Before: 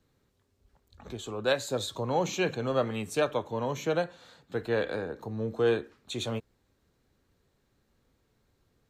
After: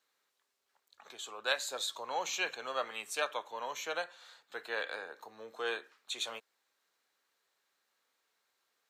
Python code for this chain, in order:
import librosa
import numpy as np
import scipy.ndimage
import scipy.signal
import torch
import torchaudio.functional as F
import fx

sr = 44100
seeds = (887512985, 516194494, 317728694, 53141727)

y = scipy.signal.sosfilt(scipy.signal.butter(2, 990.0, 'highpass', fs=sr, output='sos'), x)